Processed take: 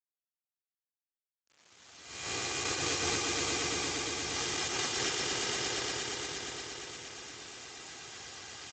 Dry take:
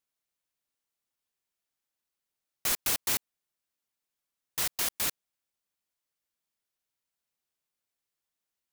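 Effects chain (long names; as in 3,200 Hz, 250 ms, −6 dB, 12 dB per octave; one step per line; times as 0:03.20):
peak hold with a rise ahead of every peak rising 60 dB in 0.61 s
camcorder AGC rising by 14 dB per second
comb filter 2.5 ms, depth 90%
dynamic equaliser 370 Hz, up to +5 dB, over −49 dBFS, Q 1.1
harmonic and percussive parts rebalanced percussive +5 dB
low-shelf EQ 160 Hz +7.5 dB
downward compressor 2 to 1, threshold −42 dBFS, peak gain reduction 14 dB
echo that builds up and dies away 117 ms, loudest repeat 5, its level −4.5 dB
bit-depth reduction 8 bits, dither none
level +3 dB
Speex 17 kbit/s 16,000 Hz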